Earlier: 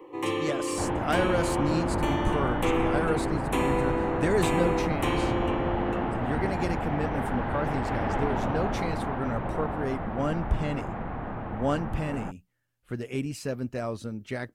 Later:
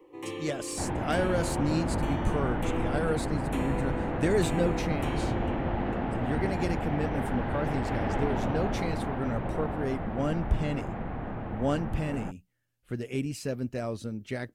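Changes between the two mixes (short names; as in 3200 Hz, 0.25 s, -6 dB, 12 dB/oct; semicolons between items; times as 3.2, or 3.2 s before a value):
first sound -7.5 dB; master: add bell 1100 Hz -5 dB 1.2 oct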